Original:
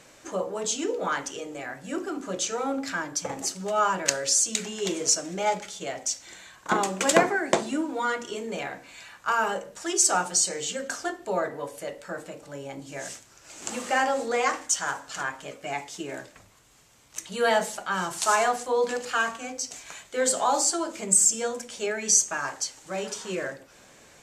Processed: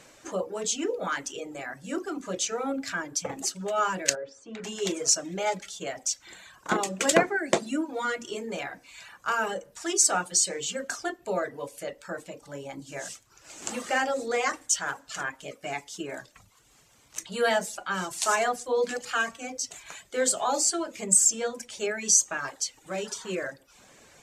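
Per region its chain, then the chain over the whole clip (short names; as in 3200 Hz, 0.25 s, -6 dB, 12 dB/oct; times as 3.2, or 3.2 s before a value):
4.15–4.64 LPF 1300 Hz + low shelf 180 Hz -7.5 dB
whole clip: reverb removal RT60 0.6 s; dynamic EQ 950 Hz, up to -5 dB, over -40 dBFS, Q 2.2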